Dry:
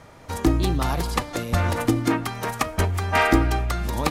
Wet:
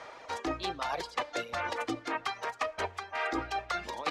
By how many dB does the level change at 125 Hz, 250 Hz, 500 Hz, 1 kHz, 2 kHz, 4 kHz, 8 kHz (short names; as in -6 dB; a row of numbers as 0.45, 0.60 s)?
-27.0, -16.5, -10.0, -7.5, -8.5, -7.0, -14.0 dB